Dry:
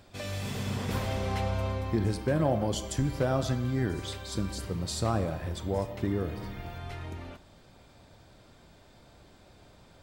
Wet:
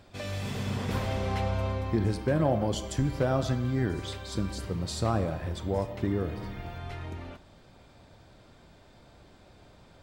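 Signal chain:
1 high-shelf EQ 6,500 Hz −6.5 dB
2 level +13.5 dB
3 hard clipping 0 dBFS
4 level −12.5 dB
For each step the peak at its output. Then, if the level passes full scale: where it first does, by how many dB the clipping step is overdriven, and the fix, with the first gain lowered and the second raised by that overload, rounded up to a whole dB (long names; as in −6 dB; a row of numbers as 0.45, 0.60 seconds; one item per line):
−16.5, −3.0, −3.0, −15.5 dBFS
no step passes full scale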